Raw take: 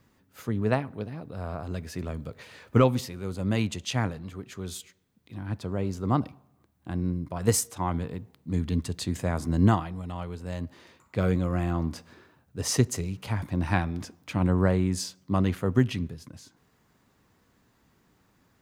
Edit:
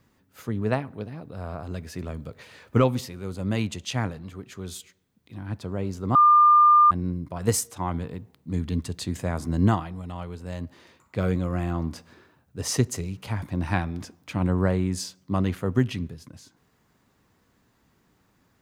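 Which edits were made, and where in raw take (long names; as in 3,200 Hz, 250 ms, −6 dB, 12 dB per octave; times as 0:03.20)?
0:06.15–0:06.91: beep over 1,200 Hz −12 dBFS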